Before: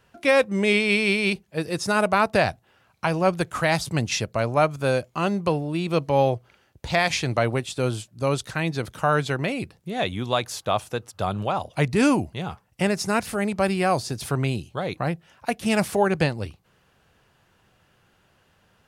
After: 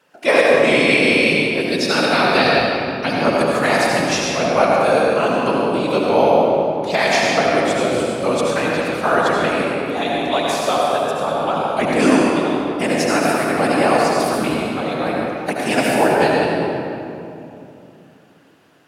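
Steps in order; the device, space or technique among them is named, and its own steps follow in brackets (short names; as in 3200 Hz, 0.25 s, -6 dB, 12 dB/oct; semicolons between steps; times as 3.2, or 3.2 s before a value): 1.68–3.25 graphic EQ 125/250/1000/4000/8000 Hz +11/-4/-6/+10/-6 dB; whispering ghost (whisperiser; HPF 260 Hz 12 dB/oct; reverb RT60 2.9 s, pre-delay 68 ms, DRR -3.5 dB); gain +3 dB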